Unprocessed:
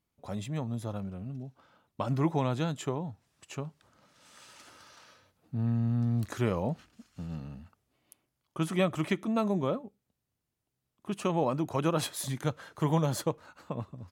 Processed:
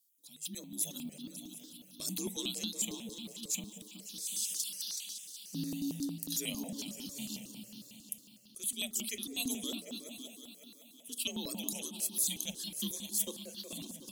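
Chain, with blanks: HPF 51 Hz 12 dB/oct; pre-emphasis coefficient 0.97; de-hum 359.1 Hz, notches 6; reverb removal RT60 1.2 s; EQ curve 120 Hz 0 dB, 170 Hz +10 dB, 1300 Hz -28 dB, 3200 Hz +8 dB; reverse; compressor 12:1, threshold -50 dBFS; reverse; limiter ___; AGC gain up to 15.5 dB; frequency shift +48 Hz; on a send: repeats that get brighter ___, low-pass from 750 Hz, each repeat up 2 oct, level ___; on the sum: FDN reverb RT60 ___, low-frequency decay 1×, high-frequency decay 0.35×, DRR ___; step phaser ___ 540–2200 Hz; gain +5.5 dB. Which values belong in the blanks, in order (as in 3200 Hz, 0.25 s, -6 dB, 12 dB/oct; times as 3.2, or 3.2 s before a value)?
-35.5 dBFS, 0.186 s, -6 dB, 0.89 s, 13 dB, 11 Hz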